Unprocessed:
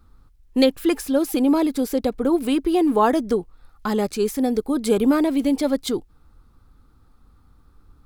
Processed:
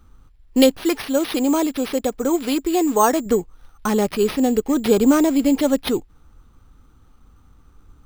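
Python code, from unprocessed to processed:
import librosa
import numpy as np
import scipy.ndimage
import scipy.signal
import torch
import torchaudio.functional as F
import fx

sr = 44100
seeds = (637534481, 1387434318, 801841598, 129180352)

y = np.repeat(x[::6], 6)[:len(x)]
y = fx.low_shelf(y, sr, hz=340.0, db=-7.0, at=(0.78, 3.26))
y = y * librosa.db_to_amplitude(3.0)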